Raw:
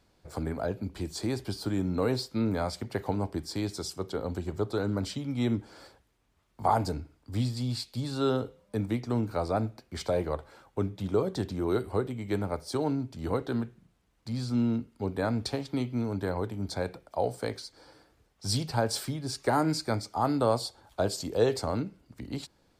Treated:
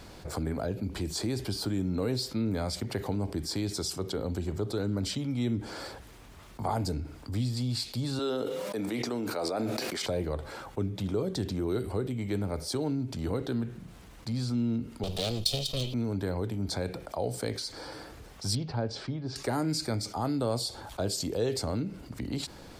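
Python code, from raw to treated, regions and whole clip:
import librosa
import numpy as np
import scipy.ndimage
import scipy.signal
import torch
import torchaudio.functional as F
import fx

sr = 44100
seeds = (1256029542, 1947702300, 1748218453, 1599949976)

y = fx.chain(x, sr, fx.highpass(hz=360.0, slope=12),
    fx.sustainer(db_per_s=34.0), at=(8.19, 10.06))
y = fx.chain(y, sr, fx.lower_of_two(delay_ms=1.6),
    fx.high_shelf_res(hz=2500.0, db=10.5, q=3.0), at=(15.03, 15.94))
y = fx.chain(y, sr, fx.lowpass(hz=5500.0, slope=24),
    fx.high_shelf(hz=2100.0, db=-9.5),
    fx.upward_expand(threshold_db=-38.0, expansion=1.5), at=(18.55, 19.36))
y = fx.dynamic_eq(y, sr, hz=1000.0, q=0.74, threshold_db=-43.0, ratio=4.0, max_db=-8)
y = fx.env_flatten(y, sr, amount_pct=50)
y = y * 10.0 ** (-4.5 / 20.0)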